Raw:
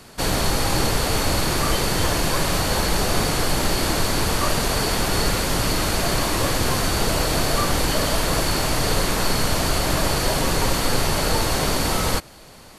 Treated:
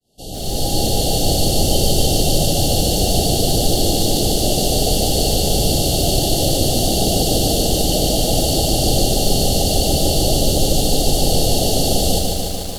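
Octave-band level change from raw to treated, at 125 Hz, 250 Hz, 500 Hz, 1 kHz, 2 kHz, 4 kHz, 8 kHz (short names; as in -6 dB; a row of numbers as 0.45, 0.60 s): +5.5, +5.5, +5.5, -0.5, -9.0, +5.5, +5.5 dB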